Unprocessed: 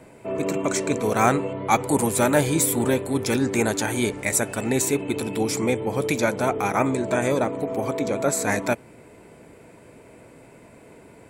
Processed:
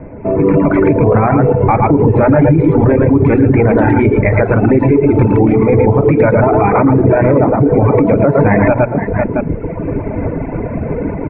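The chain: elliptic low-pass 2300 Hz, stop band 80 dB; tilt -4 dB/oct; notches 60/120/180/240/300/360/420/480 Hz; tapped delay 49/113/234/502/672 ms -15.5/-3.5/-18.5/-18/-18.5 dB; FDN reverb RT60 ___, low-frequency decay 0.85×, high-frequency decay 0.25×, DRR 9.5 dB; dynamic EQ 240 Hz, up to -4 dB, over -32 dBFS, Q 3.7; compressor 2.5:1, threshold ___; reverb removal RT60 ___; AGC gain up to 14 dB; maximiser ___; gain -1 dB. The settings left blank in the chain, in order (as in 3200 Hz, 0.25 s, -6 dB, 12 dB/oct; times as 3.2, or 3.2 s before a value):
1.1 s, -25 dBFS, 1.4 s, +11.5 dB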